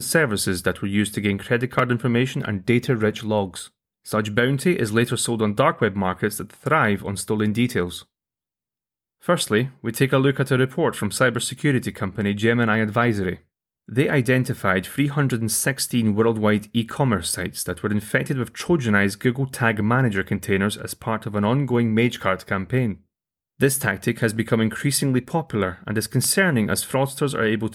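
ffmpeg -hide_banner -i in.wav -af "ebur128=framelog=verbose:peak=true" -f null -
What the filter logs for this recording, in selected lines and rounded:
Integrated loudness:
  I:         -21.8 LUFS
  Threshold: -32.0 LUFS
Loudness range:
  LRA:         2.0 LU
  Threshold: -42.2 LUFS
  LRA low:   -23.2 LUFS
  LRA high:  -21.2 LUFS
True peak:
  Peak:       -4.5 dBFS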